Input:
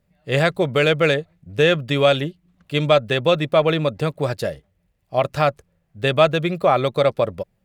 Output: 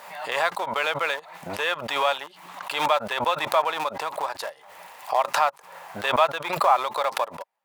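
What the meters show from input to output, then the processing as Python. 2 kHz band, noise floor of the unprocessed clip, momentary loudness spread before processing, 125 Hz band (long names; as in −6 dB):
−3.5 dB, −68 dBFS, 7 LU, −22.0 dB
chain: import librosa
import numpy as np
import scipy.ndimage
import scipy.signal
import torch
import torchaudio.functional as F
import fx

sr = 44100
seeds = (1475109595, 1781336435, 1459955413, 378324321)

p1 = fx.schmitt(x, sr, flips_db=-20.0)
p2 = x + (p1 * librosa.db_to_amplitude(-9.5))
p3 = fx.highpass_res(p2, sr, hz=920.0, q=4.9)
p4 = fx.pre_swell(p3, sr, db_per_s=57.0)
y = p4 * librosa.db_to_amplitude(-8.0)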